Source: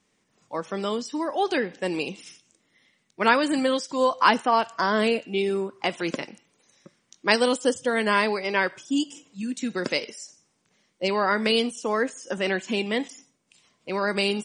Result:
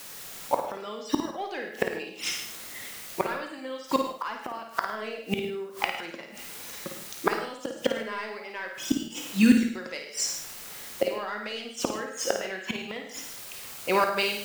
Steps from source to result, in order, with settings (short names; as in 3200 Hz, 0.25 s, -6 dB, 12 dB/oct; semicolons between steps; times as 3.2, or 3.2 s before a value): ending faded out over 1.86 s; high shelf 5800 Hz -9.5 dB; AGC gain up to 10 dB; overdrive pedal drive 11 dB, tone 7500 Hz, clips at -0.5 dBFS; in parallel at -7.5 dB: requantised 6-bit, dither triangular; on the sum: flipped gate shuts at -10 dBFS, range -26 dB; on a send: flutter echo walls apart 9.2 m, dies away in 0.45 s; on the sum: non-linear reverb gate 0.17 s flat, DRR 7 dB